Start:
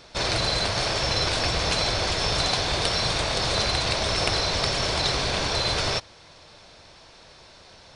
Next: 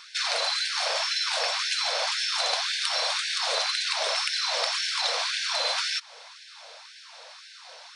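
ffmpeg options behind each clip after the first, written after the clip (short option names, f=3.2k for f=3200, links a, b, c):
-filter_complex "[0:a]acrossover=split=160[a][b];[b]acompressor=threshold=-30dB:ratio=2.5[c];[a][c]amix=inputs=2:normalize=0,afftfilt=real='re*gte(b*sr/1024,430*pow(1500/430,0.5+0.5*sin(2*PI*1.9*pts/sr)))':imag='im*gte(b*sr/1024,430*pow(1500/430,0.5+0.5*sin(2*PI*1.9*pts/sr)))':win_size=1024:overlap=0.75,volume=4.5dB"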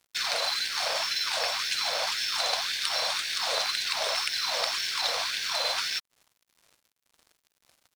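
-af "aeval=exprs='sgn(val(0))*max(abs(val(0))-0.01,0)':c=same"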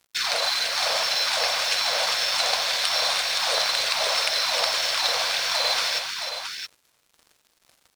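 -af "aecho=1:1:263|306|670:0.251|0.355|0.422,volume=4dB"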